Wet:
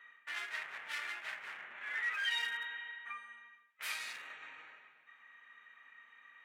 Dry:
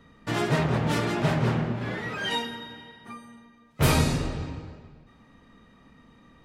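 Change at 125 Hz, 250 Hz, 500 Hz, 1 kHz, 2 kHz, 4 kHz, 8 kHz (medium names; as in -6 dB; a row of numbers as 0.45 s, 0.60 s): under -40 dB, under -40 dB, -32.0 dB, -16.5 dB, -4.0 dB, -8.5 dB, -15.0 dB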